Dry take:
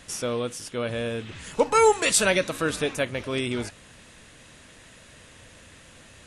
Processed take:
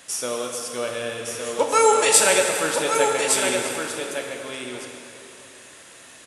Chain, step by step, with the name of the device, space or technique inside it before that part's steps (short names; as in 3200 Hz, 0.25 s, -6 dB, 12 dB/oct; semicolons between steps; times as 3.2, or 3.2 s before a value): filter by subtraction (in parallel: LPF 630 Hz 12 dB/oct + phase invert); on the sum: high shelf 6600 Hz +10.5 dB; echo 1.162 s -5.5 dB; plate-style reverb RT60 3 s, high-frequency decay 0.75×, DRR 1.5 dB; gain -1 dB